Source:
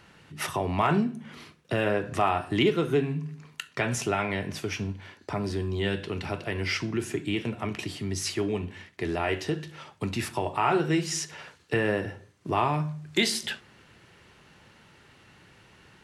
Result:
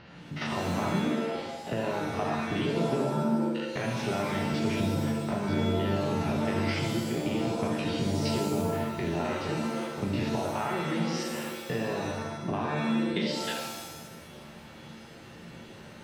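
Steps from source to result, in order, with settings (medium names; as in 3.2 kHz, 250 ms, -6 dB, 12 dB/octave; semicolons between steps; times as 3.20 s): spectrogram pixelated in time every 50 ms; steep low-pass 5.2 kHz 36 dB/octave; peaking EQ 620 Hz +5 dB 0.77 oct; compression, threshold -35 dBFS, peak gain reduction 16.5 dB; peaking EQ 160 Hz +7 dB 1.3 oct; pitch-shifted reverb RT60 1 s, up +7 st, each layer -2 dB, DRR 2 dB; trim +2 dB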